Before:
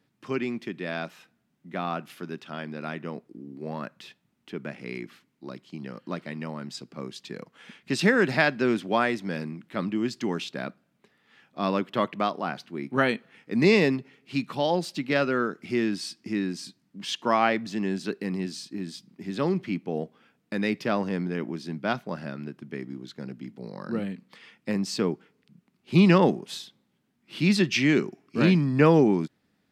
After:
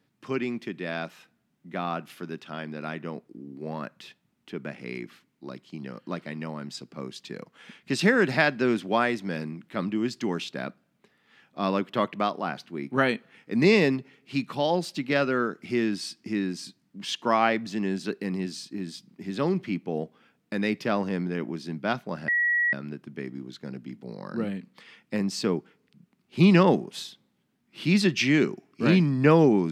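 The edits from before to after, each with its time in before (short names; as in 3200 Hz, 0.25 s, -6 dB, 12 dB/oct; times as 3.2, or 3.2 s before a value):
22.28 add tone 1920 Hz -20.5 dBFS 0.45 s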